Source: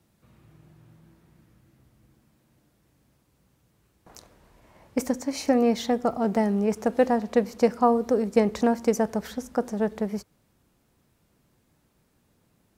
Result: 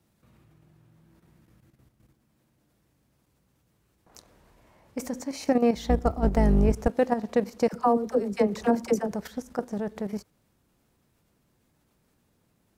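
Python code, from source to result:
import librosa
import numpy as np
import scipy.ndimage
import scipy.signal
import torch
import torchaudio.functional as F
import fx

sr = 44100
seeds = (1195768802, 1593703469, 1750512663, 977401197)

y = fx.octave_divider(x, sr, octaves=2, level_db=4.0, at=(5.75, 6.88))
y = fx.level_steps(y, sr, step_db=10)
y = fx.dispersion(y, sr, late='lows', ms=55.0, hz=550.0, at=(7.68, 9.13))
y = y * librosa.db_to_amplitude(1.0)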